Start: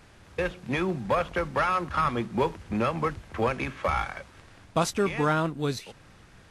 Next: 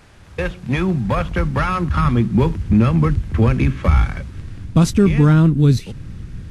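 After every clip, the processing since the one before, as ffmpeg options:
ffmpeg -i in.wav -filter_complex "[0:a]asubboost=boost=11:cutoff=220,asplit=2[link_01][link_02];[link_02]alimiter=limit=-14dB:level=0:latency=1,volume=-1dB[link_03];[link_01][link_03]amix=inputs=2:normalize=0" out.wav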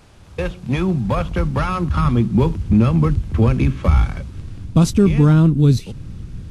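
ffmpeg -i in.wav -af "equalizer=frequency=1800:width_type=o:width=0.76:gain=-6.5" out.wav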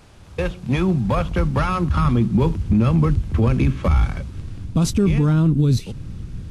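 ffmpeg -i in.wav -af "alimiter=limit=-9.5dB:level=0:latency=1:release=10" out.wav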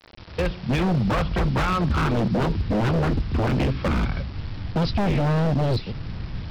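ffmpeg -i in.wav -af "aresample=11025,acrusher=bits=6:mix=0:aa=0.000001,aresample=44100,aeval=exprs='0.158*(abs(mod(val(0)/0.158+3,4)-2)-1)':channel_layout=same" out.wav

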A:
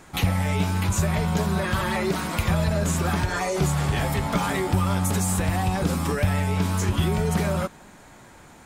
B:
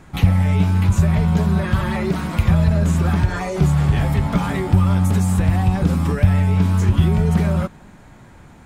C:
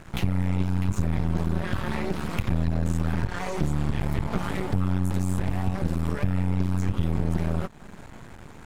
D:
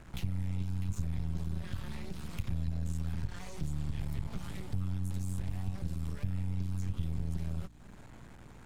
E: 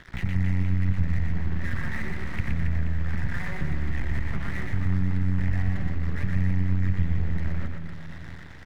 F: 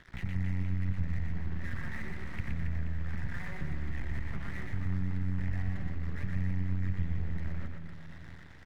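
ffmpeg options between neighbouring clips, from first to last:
ffmpeg -i in.wav -af "bass=frequency=250:gain=9,treble=frequency=4000:gain=-6" out.wav
ffmpeg -i in.wav -af "acompressor=threshold=-31dB:ratio=2,aeval=exprs='max(val(0),0)':channel_layout=same,volume=4dB" out.wav
ffmpeg -i in.wav -filter_complex "[0:a]acrossover=split=170|3000[link_01][link_02][link_03];[link_02]acompressor=threshold=-46dB:ratio=2.5[link_04];[link_01][link_04][link_03]amix=inputs=3:normalize=0,aeval=exprs='val(0)+0.00447*(sin(2*PI*60*n/s)+sin(2*PI*2*60*n/s)/2+sin(2*PI*3*60*n/s)/3+sin(2*PI*4*60*n/s)/4+sin(2*PI*5*60*n/s)/5)':channel_layout=same,volume=-8dB" out.wav
ffmpeg -i in.wav -filter_complex "[0:a]lowpass=frequency=1900:width_type=q:width=6,aeval=exprs='sgn(val(0))*max(abs(val(0))-0.00282,0)':channel_layout=same,asplit=2[link_01][link_02];[link_02]aecho=0:1:120|276|478.8|742.4|1085:0.631|0.398|0.251|0.158|0.1[link_03];[link_01][link_03]amix=inputs=2:normalize=0,volume=7dB" out.wav
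ffmpeg -i in.wav -af "volume=-8dB" -ar 48000 -c:a aac -b:a 192k out.aac

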